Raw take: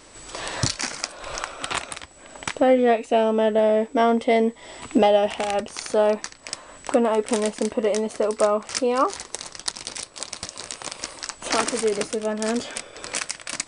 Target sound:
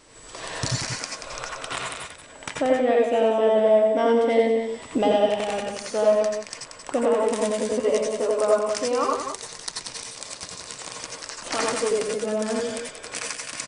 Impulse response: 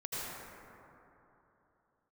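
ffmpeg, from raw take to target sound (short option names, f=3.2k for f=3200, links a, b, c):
-filter_complex "[0:a]asettb=1/sr,asplit=3[a][b][c];[a]atrim=end=7.574[d];[b]atrim=start=7.57:end=8.29,asetpts=PTS-STARTPTS,afade=t=in:d=0.004:c=qsin,afade=t=out:st=0.716:d=0.004:c=qsin,asplit=2[e][f];[f]adelay=12,volume=-2.5dB[g];[e][g]amix=inputs=2:normalize=0,atrim=end_sample=31752[h];[c]atrim=start=8.286[i];[d][h]acrossfade=d=0.004:c1=hsin:c2=qsin[j];[j][i]acrossfade=d=0.004:c1=qsin:c2=hsin,aecho=1:1:182:0.422[k];[1:a]atrim=start_sample=2205,afade=t=out:st=0.15:d=0.01,atrim=end_sample=7056,asetrate=42336,aresample=44100[l];[k][l]afir=irnorm=-1:irlink=0"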